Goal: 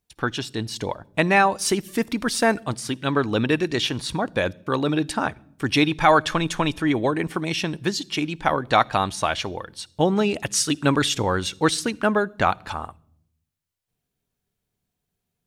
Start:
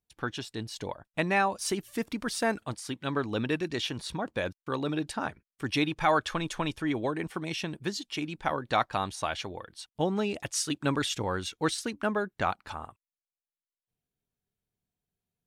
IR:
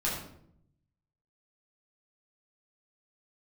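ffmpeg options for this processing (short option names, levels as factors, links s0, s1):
-filter_complex "[0:a]asplit=2[s0][s1];[s1]equalizer=f=1100:w=0.53:g=-11[s2];[1:a]atrim=start_sample=2205,adelay=53[s3];[s2][s3]afir=irnorm=-1:irlink=0,volume=0.0422[s4];[s0][s4]amix=inputs=2:normalize=0,volume=2.66"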